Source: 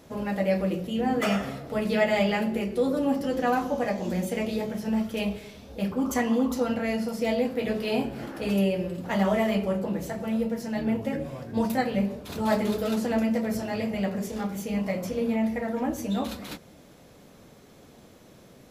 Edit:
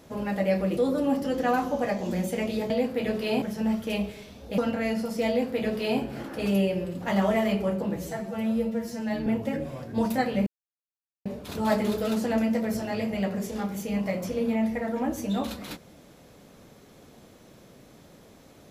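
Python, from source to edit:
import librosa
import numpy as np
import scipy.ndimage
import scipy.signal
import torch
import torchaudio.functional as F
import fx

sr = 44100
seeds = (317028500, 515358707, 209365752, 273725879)

y = fx.edit(x, sr, fx.cut(start_s=0.77, length_s=1.99),
    fx.cut(start_s=5.85, length_s=0.76),
    fx.duplicate(start_s=7.31, length_s=0.72, to_s=4.69),
    fx.stretch_span(start_s=9.99, length_s=0.87, factor=1.5),
    fx.insert_silence(at_s=12.06, length_s=0.79), tone=tone)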